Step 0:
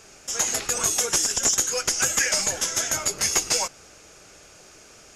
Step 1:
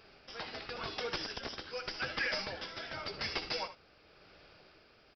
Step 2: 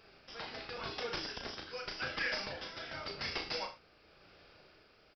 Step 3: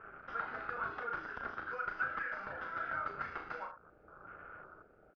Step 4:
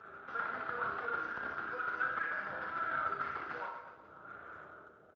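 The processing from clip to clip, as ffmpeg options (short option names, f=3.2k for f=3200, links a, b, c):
-af "aresample=11025,asoftclip=type=hard:threshold=-20dB,aresample=44100,tremolo=f=0.9:d=0.41,aecho=1:1:63|75:0.168|0.2,volume=-7.5dB"
-filter_complex "[0:a]asplit=2[a][b];[b]adelay=35,volume=-5dB[c];[a][c]amix=inputs=2:normalize=0,volume=-2.5dB"
-af "acompressor=threshold=-47dB:ratio=6,afwtdn=0.000891,lowpass=f=1.4k:t=q:w=7.1,volume=3.5dB"
-filter_complex "[0:a]asplit=2[a][b];[b]aecho=0:1:60|138|239.4|371.2|542.6:0.631|0.398|0.251|0.158|0.1[c];[a][c]amix=inputs=2:normalize=0" -ar 16000 -c:a libspeex -b:a 17k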